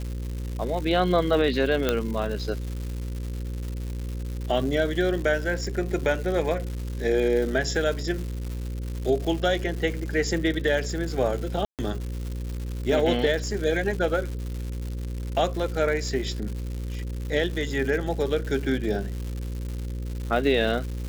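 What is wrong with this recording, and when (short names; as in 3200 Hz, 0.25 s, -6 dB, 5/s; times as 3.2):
buzz 60 Hz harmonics 9 -31 dBFS
crackle 260/s -32 dBFS
1.89 pop -8 dBFS
11.65–11.79 gap 0.138 s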